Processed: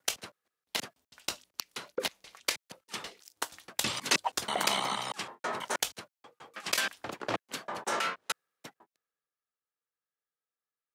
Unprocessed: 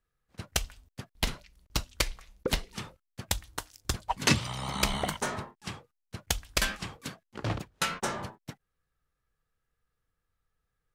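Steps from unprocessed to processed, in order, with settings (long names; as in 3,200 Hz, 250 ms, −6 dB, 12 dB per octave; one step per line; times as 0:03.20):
slices reordered back to front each 160 ms, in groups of 4
high-pass filter 370 Hz 12 dB per octave
in parallel at −0.5 dB: compressor whose output falls as the input rises −34 dBFS, ratio −0.5
on the sum: multiband upward and downward expander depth 40%
level −3.5 dB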